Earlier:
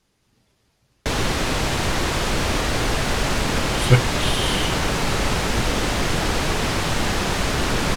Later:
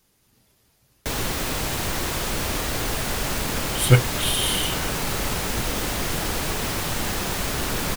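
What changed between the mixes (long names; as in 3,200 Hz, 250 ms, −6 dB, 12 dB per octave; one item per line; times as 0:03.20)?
background −5.5 dB
master: remove high-frequency loss of the air 58 metres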